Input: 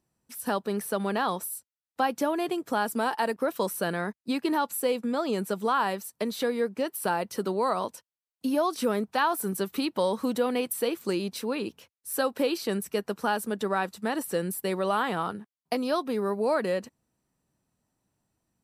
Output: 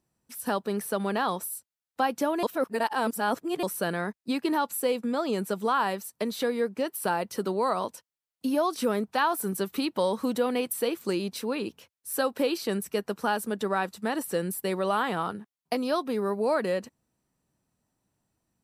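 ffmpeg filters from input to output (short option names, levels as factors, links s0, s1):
-filter_complex "[0:a]asplit=3[s0][s1][s2];[s0]atrim=end=2.432[s3];[s1]atrim=start=2.428:end=3.632,asetpts=PTS-STARTPTS,areverse[s4];[s2]atrim=start=3.628[s5];[s3][s4]acrossfade=d=0.004:c1=hsin:c2=hsin[s6];[s6][s5]acrossfade=d=0.004:c1=hsin:c2=hsin"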